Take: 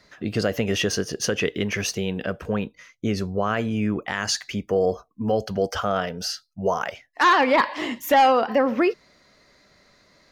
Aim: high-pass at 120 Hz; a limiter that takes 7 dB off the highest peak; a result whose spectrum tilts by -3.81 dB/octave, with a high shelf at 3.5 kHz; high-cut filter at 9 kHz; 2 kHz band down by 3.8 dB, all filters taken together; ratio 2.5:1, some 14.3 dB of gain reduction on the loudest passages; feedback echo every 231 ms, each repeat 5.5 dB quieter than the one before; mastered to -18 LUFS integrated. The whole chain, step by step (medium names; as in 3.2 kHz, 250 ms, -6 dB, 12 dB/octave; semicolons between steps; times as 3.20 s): high-pass 120 Hz; low-pass 9 kHz; peaking EQ 2 kHz -7 dB; treble shelf 3.5 kHz +7.5 dB; compression 2.5:1, threshold -37 dBFS; peak limiter -26 dBFS; feedback delay 231 ms, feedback 53%, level -5.5 dB; trim +17.5 dB